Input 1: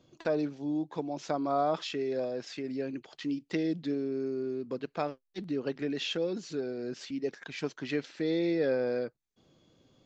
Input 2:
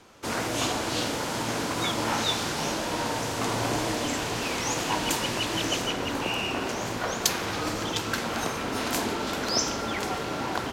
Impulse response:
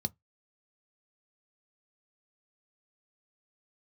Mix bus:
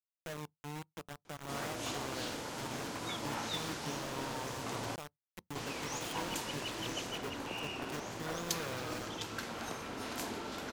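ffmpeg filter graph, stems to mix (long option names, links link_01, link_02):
-filter_complex "[0:a]acompressor=threshold=-34dB:ratio=2,flanger=delay=3.8:depth=5.4:regen=84:speed=0.87:shape=triangular,acrusher=bits=5:mix=0:aa=0.000001,volume=-5.5dB,asplit=2[link_01][link_02];[link_02]volume=-16.5dB[link_03];[1:a]adelay=1250,volume=-12dB,asplit=3[link_04][link_05][link_06];[link_04]atrim=end=4.96,asetpts=PTS-STARTPTS,afade=type=out:start_time=4.956:duration=0.004:curve=hsin[link_07];[link_05]atrim=start=4.96:end=5.55,asetpts=PTS-STARTPTS,volume=0[link_08];[link_06]atrim=start=5.55,asetpts=PTS-STARTPTS,afade=type=in:duration=0.004:curve=hsin[link_09];[link_07][link_08][link_09]concat=n=3:v=0:a=1[link_10];[2:a]atrim=start_sample=2205[link_11];[link_03][link_11]afir=irnorm=-1:irlink=0[link_12];[link_01][link_10][link_12]amix=inputs=3:normalize=0,acompressor=mode=upward:threshold=-48dB:ratio=2.5"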